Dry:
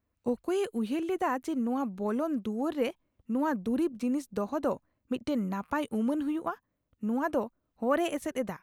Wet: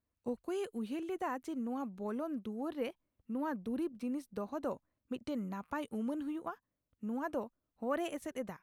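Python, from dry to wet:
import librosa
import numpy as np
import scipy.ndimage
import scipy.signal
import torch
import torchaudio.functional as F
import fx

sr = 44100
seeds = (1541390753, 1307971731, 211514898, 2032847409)

y = fx.peak_eq(x, sr, hz=7000.0, db=-8.0, octaves=0.34, at=(2.11, 4.52))
y = F.gain(torch.from_numpy(y), -8.0).numpy()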